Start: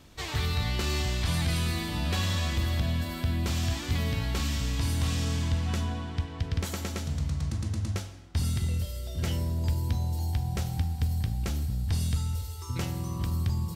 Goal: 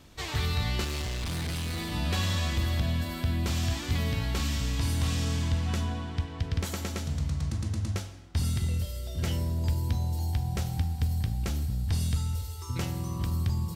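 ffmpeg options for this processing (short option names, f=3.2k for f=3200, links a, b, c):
-filter_complex "[0:a]asettb=1/sr,asplit=3[a][b][c];[a]atrim=end=0.844[d];[b]atrim=start=0.84:end=1.92,asetpts=PTS-STARTPTS,afade=t=in:d=0.004:c=qsin,afade=t=out:st=1.076:d=0.004:c=qsin,volume=30dB,asoftclip=hard,volume=-30dB[e];[c]atrim=start=1.916[f];[d][e]acrossfade=d=0.004:c1=hsin:c2=qsin[g];[g][f]acrossfade=d=0.004:c1=qsin:c2=hsin"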